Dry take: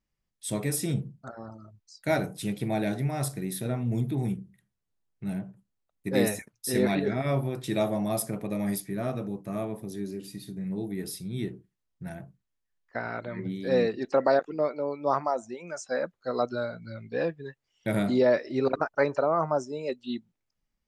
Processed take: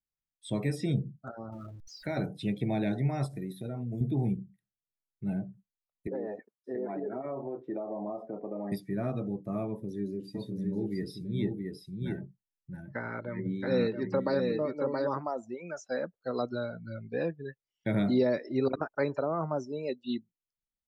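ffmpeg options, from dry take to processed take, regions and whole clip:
-filter_complex "[0:a]asettb=1/sr,asplit=3[s0][s1][s2];[s0]atrim=end=1.524[s3];[s1]atrim=start=1.52:end=2.17,asetpts=PTS-STARTPTS,afade=t=in:d=0.004:c=qsin,afade=t=out:st=0.646:d=0.004:c=qsin,aeval=exprs='val(0)+0.5*0.0075*sgn(val(0))':c=same,acompressor=threshold=0.0224:ratio=2:attack=3.2:release=140:knee=1:detection=peak[s4];[s2]atrim=start=2.166[s5];[s3][s4]acrossfade=d=0.004:c1=hsin:c2=qsin[s6];[s6][s5]acrossfade=d=0.004:c1=qsin:c2=hsin,asettb=1/sr,asplit=3[s7][s8][s9];[s7]atrim=end=3.264[s10];[s8]atrim=start=3.26:end=4.01,asetpts=PTS-STARTPTS,afade=t=in:d=0.004:c=qsin,afade=t=out:st=0.746:d=0.004:c=qsin,highshelf=f=6600:g=10,acompressor=threshold=0.0251:ratio=6:attack=3.2:release=140:knee=1:detection=peak[s11];[s9]atrim=start=4.006[s12];[s10][s11]acrossfade=d=0.004:c1=hsin:c2=qsin[s13];[s13][s12]acrossfade=d=0.004:c1=qsin:c2=hsin,asettb=1/sr,asplit=3[s14][s15][s16];[s14]atrim=end=6.074[s17];[s15]atrim=start=6.07:end=8.72,asetpts=PTS-STARTPTS,afade=t=in:d=0.004:c=qsin,afade=t=out:st=2.646:d=0.004:c=qsin,asuperpass=centerf=620:order=4:qfactor=0.63,acompressor=threshold=0.0316:ratio=6:attack=3.2:release=140:knee=1:detection=peak[s18];[s16]atrim=start=8.716[s19];[s17][s18]acrossfade=d=0.004:c1=hsin:c2=qsin[s20];[s20][s19]acrossfade=d=0.004:c1=qsin:c2=hsin,asettb=1/sr,asplit=3[s21][s22][s23];[s21]atrim=end=9.674[s24];[s22]atrim=start=9.67:end=15.18,asetpts=PTS-STARTPTS,afade=t=in:d=0.004:c=qsin,afade=t=out:st=5.506:d=0.004:c=qsin,asuperstop=centerf=700:order=4:qfactor=6,aecho=1:1:674:0.668,atrim=end_sample=242991[s25];[s23]atrim=start=15.176[s26];[s24][s25]acrossfade=d=0.004:c1=hsin:c2=qsin[s27];[s27][s26]acrossfade=d=0.004:c1=qsin:c2=hsin,acrossover=split=5100[s28][s29];[s29]acompressor=threshold=0.00355:ratio=4:attack=1:release=60[s30];[s28][s30]amix=inputs=2:normalize=0,afftdn=nr=17:nf=-45,acrossover=split=390|3000[s31][s32][s33];[s32]acompressor=threshold=0.0126:ratio=2[s34];[s31][s34][s33]amix=inputs=3:normalize=0"

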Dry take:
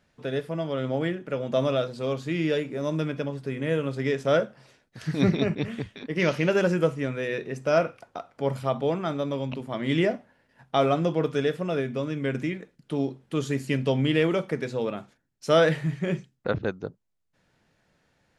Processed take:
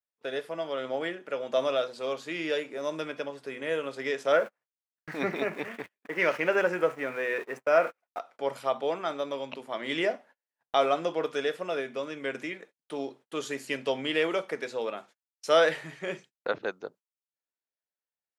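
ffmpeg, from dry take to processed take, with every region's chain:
-filter_complex "[0:a]asettb=1/sr,asplit=3[s0][s1][s2];[s0]atrim=end=4.324[s3];[s1]atrim=start=4.32:end=8.19,asetpts=PTS-STARTPTS,afade=t=in:d=0.004:c=qsin,afade=t=out:st=3.866:d=0.004:c=qsin,aeval=exprs='val(0)+0.5*0.015*sgn(val(0))':c=same,highshelf=f=2800:t=q:w=1.5:g=-8,agate=range=0.00794:threshold=0.02:ratio=16:release=100:detection=peak[s4];[s2]atrim=start=8.186[s5];[s3][s4]acrossfade=d=0.004:c1=hsin:c2=qsin[s6];[s6][s5]acrossfade=d=0.004:c1=qsin:c2=hsin,highpass=490,agate=range=0.0251:threshold=0.00282:ratio=16:detection=peak"

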